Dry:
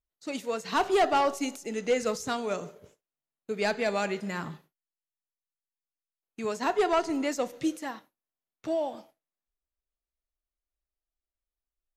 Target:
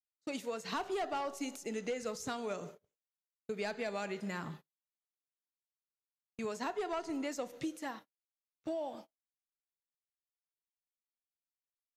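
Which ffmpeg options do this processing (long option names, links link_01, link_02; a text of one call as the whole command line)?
ffmpeg -i in.wav -af "agate=range=-27dB:threshold=-46dB:ratio=16:detection=peak,acompressor=threshold=-32dB:ratio=5,volume=-3dB" out.wav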